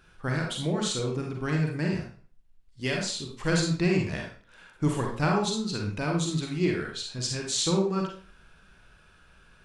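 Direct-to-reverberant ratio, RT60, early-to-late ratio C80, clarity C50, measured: -0.5 dB, 0.45 s, 8.5 dB, 3.0 dB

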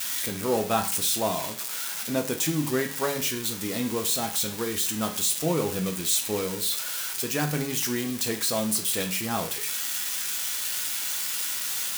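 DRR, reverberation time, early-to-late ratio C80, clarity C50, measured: 3.0 dB, 0.45 s, 15.5 dB, 11.0 dB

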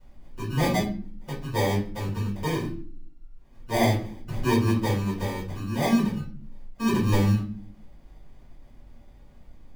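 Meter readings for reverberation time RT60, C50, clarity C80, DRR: no single decay rate, 6.5 dB, 11.5 dB, -10.0 dB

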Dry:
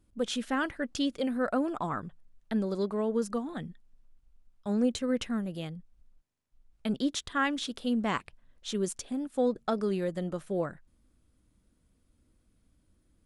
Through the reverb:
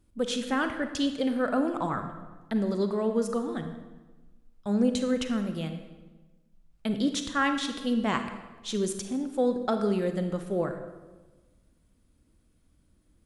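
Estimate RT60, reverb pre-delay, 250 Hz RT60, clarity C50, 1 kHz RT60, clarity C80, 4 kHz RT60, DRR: 1.3 s, 33 ms, 1.5 s, 8.0 dB, 1.2 s, 9.5 dB, 0.95 s, 7.0 dB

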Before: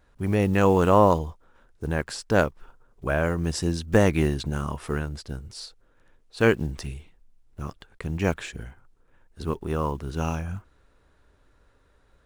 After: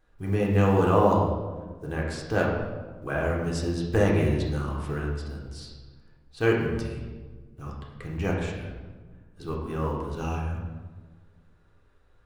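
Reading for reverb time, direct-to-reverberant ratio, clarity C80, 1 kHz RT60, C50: 1.4 s, -3.0 dB, 4.5 dB, 1.2 s, 2.5 dB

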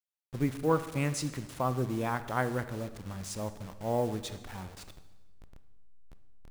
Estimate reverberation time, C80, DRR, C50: 1.2 s, 14.5 dB, 11.0 dB, 12.5 dB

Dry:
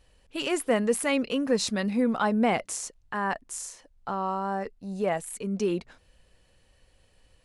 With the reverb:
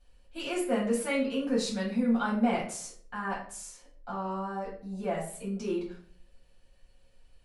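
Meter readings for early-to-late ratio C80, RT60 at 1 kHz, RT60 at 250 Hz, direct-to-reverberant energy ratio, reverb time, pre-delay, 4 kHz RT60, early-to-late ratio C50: 10.0 dB, 0.50 s, 0.60 s, -6.0 dB, 0.50 s, 4 ms, 0.35 s, 5.5 dB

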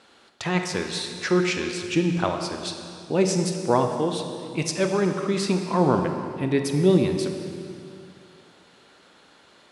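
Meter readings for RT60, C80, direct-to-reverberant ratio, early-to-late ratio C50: 2.5 s, 6.5 dB, 4.5 dB, 5.5 dB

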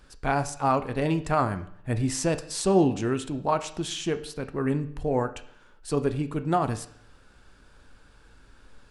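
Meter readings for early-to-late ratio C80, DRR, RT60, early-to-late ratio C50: 17.0 dB, 9.5 dB, 0.65 s, 14.0 dB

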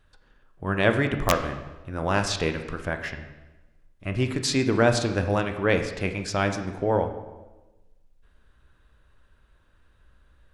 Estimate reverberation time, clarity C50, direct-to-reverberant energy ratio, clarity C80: 1.1 s, 9.0 dB, 6.5 dB, 11.0 dB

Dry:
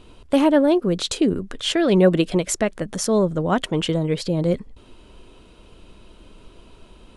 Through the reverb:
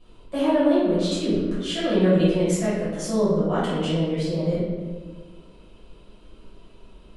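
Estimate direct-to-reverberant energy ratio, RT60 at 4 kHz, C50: -12.5 dB, 0.85 s, -2.0 dB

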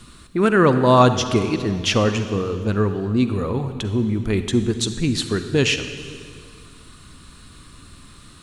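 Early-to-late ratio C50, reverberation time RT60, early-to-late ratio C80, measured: 9.5 dB, 2.1 s, 10.0 dB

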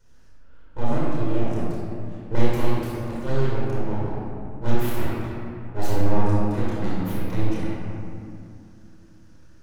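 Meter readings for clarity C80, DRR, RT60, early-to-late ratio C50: -1.0 dB, -7.0 dB, 2.6 s, -4.0 dB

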